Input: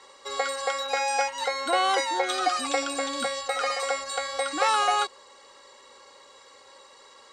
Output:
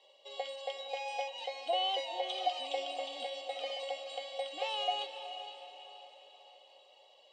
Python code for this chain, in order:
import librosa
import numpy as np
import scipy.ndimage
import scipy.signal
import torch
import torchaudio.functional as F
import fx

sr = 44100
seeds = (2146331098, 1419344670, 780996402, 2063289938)

y = fx.double_bandpass(x, sr, hz=1400.0, octaves=2.2)
y = fx.echo_diffused(y, sr, ms=460, feedback_pct=47, wet_db=-9.5)